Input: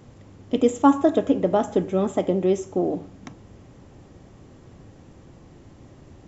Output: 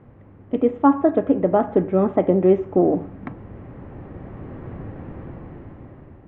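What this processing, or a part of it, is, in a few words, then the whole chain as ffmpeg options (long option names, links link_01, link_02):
action camera in a waterproof case: -af "lowpass=frequency=2100:width=0.5412,lowpass=frequency=2100:width=1.3066,dynaudnorm=framelen=580:gausssize=5:maxgain=15dB" -ar 48000 -c:a aac -b:a 96k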